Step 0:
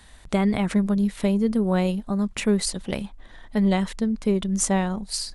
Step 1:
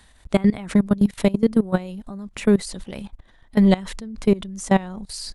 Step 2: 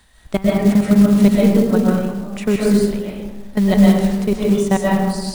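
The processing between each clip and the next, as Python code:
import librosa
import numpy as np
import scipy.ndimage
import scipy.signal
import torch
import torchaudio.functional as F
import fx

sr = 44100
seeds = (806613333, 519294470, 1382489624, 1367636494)

y1 = fx.level_steps(x, sr, step_db=20)
y1 = y1 * librosa.db_to_amplitude(7.0)
y2 = fx.rev_freeverb(y1, sr, rt60_s=1.3, hf_ratio=0.45, predelay_ms=90, drr_db=-4.5)
y2 = fx.quant_companded(y2, sr, bits=6)
y2 = y2 * librosa.db_to_amplitude(-1.0)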